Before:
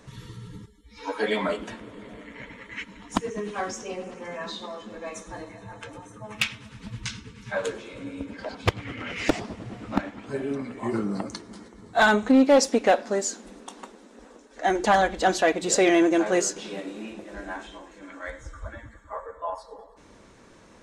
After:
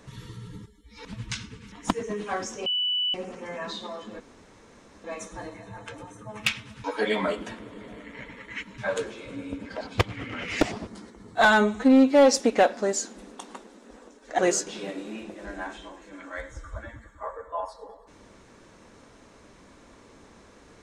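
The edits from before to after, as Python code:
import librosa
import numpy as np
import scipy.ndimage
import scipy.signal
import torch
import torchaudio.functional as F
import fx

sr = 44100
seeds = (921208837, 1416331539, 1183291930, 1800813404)

y = fx.edit(x, sr, fx.swap(start_s=1.05, length_s=1.94, other_s=6.79, other_length_s=0.67),
    fx.insert_tone(at_s=3.93, length_s=0.48, hz=2970.0, db=-23.0),
    fx.insert_room_tone(at_s=4.99, length_s=0.84),
    fx.cut(start_s=9.55, length_s=1.9),
    fx.stretch_span(start_s=12.03, length_s=0.59, factor=1.5),
    fx.cut(start_s=14.67, length_s=1.61), tone=tone)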